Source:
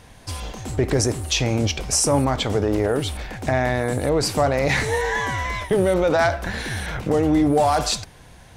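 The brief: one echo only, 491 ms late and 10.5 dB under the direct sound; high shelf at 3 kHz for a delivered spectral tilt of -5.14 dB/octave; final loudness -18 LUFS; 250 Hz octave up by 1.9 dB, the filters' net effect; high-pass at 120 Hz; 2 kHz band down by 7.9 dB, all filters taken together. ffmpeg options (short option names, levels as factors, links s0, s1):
-af "highpass=120,equalizer=f=250:t=o:g=3,equalizer=f=2000:t=o:g=-9,highshelf=f=3000:g=-3,aecho=1:1:491:0.299,volume=1.5"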